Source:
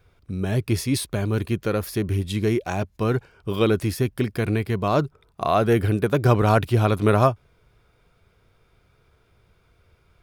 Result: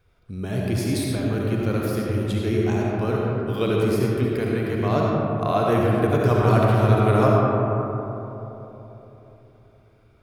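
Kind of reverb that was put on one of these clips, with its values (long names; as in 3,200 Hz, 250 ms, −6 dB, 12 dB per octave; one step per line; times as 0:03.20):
comb and all-pass reverb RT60 3.6 s, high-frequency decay 0.3×, pre-delay 30 ms, DRR −3.5 dB
level −5 dB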